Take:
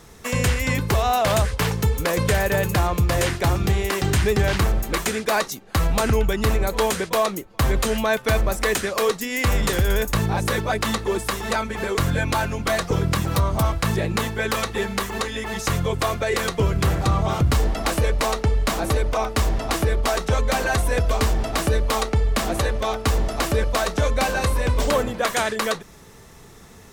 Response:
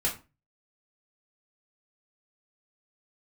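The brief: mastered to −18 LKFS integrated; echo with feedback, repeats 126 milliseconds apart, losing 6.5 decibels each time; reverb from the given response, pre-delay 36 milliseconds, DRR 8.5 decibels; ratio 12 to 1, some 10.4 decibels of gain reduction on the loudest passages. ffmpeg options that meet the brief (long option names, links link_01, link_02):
-filter_complex "[0:a]acompressor=threshold=-26dB:ratio=12,aecho=1:1:126|252|378|504|630|756:0.473|0.222|0.105|0.0491|0.0231|0.0109,asplit=2[link_01][link_02];[1:a]atrim=start_sample=2205,adelay=36[link_03];[link_02][link_03]afir=irnorm=-1:irlink=0,volume=-15.5dB[link_04];[link_01][link_04]amix=inputs=2:normalize=0,volume=10dB"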